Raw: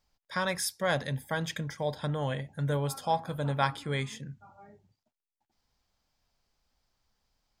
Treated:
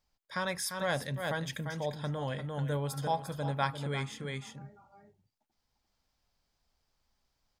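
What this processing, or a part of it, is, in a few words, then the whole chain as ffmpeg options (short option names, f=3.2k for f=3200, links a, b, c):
ducked delay: -filter_complex "[0:a]asplit=3[a][b][c];[b]adelay=347,volume=-2dB[d];[c]apad=whole_len=350502[e];[d][e]sidechaincompress=threshold=-39dB:ratio=8:attack=45:release=171[f];[a][f]amix=inputs=2:normalize=0,volume=-3.5dB"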